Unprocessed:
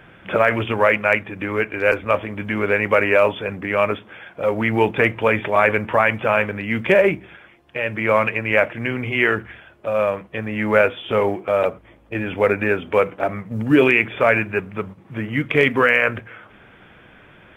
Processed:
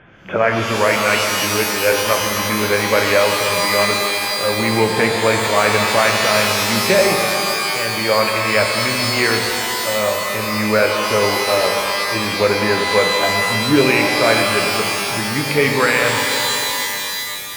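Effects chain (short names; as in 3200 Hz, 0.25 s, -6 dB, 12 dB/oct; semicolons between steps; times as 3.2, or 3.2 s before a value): air absorption 150 m; shimmer reverb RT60 3 s, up +12 st, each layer -2 dB, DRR 2.5 dB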